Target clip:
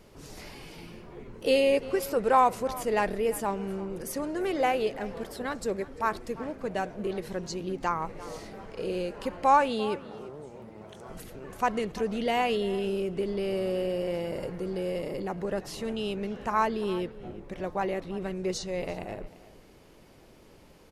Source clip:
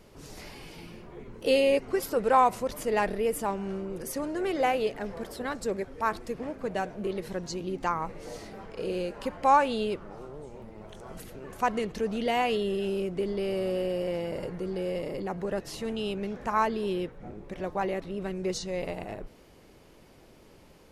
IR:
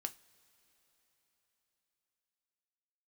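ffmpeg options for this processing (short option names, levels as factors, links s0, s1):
-filter_complex "[0:a]asettb=1/sr,asplit=3[s0][s1][s2];[s0]atrim=end=9.694[s3];[s1]atrim=start=9.69:end=11.09,asetpts=PTS-STARTPTS,afade=t=in:d=0.004:c=qsin,afade=t=out:st=1.396:d=0.004:c=qsin,highpass=90[s4];[s2]atrim=start=11.086[s5];[s3][s4]acrossfade=d=0.004:c1=hsin:c2=qsin[s6];[s6][s5]acrossfade=d=0.004:c1=qsin:c2=hsin,asettb=1/sr,asplit=3[s7][s8][s9];[s7]atrim=end=14.104[s10];[s8]atrim=start=14.1:end=15.31,asetpts=PTS-STARTPTS,afade=t=in:d=0.004:c=qsin,afade=t=out:st=1.206:d=0.004:c=qsin,highshelf=f=10000:g=5[s11];[s9]atrim=start=15.306[s12];[s10][s11]acrossfade=d=0.004:c1=hsin:c2=qsin[s13];[s13][s12]acrossfade=d=0.004:c1=qsin:c2=hsin,asplit=2[s14][s15];[s15]adelay=344,volume=0.141,highshelf=f=4000:g=-7.74[s16];[s14][s16]amix=inputs=2:normalize=0"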